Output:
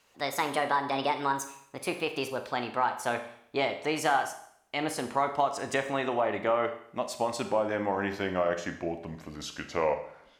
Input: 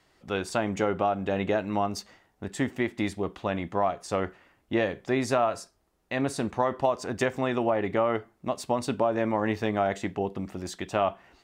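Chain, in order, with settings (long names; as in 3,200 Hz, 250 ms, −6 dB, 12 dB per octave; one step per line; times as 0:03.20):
gliding playback speed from 145% → 75%
low-shelf EQ 350 Hz −9.5 dB
four-comb reverb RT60 0.66 s, combs from 29 ms, DRR 8 dB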